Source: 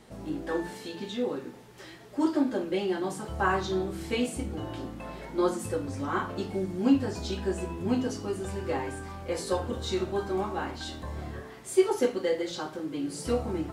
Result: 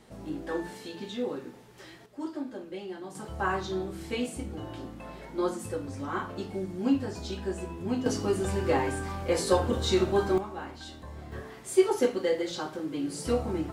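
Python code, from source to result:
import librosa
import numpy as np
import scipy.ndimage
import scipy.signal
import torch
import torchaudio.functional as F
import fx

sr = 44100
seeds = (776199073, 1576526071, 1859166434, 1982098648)

y = fx.gain(x, sr, db=fx.steps((0.0, -2.0), (2.06, -10.0), (3.15, -3.0), (8.06, 5.0), (10.38, -6.0), (11.32, 0.5)))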